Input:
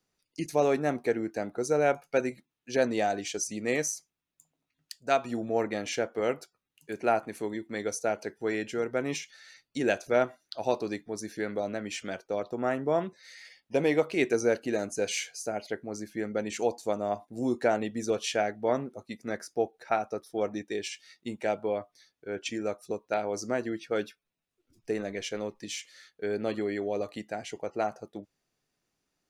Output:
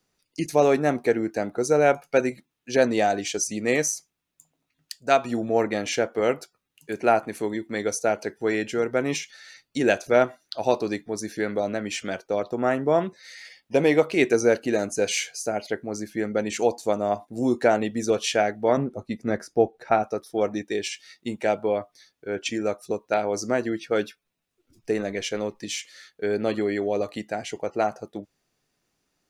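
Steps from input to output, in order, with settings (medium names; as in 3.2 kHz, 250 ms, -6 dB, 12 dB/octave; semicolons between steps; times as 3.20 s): 18.77–20.03 s: tilt EQ -2 dB/octave; trim +6 dB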